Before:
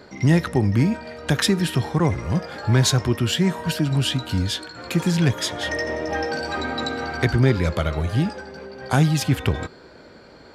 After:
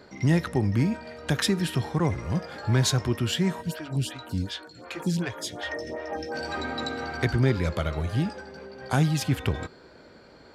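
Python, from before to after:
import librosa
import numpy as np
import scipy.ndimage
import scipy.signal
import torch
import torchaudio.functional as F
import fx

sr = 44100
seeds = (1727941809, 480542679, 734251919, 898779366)

y = fx.stagger_phaser(x, sr, hz=2.7, at=(3.61, 6.34), fade=0.02)
y = y * 10.0 ** (-5.0 / 20.0)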